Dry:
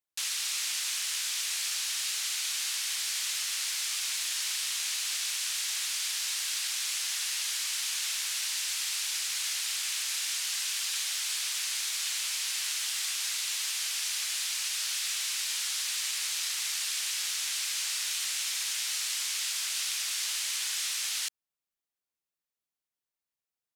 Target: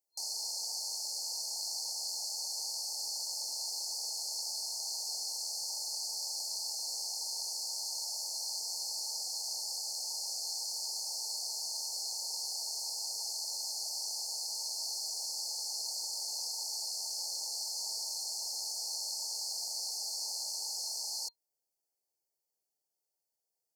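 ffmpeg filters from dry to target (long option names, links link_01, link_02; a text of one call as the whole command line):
ffmpeg -i in.wav -filter_complex "[0:a]lowshelf=frequency=320:width_type=q:width=1.5:gain=-7,acrossover=split=4200[link_01][link_02];[link_02]acompressor=threshold=-46dB:ratio=4:attack=1:release=60[link_03];[link_01][link_03]amix=inputs=2:normalize=0,afftfilt=real='re*(1-between(b*sr/4096,940,4200))':imag='im*(1-between(b*sr/4096,940,4200))':win_size=4096:overlap=0.75,volume=4.5dB" out.wav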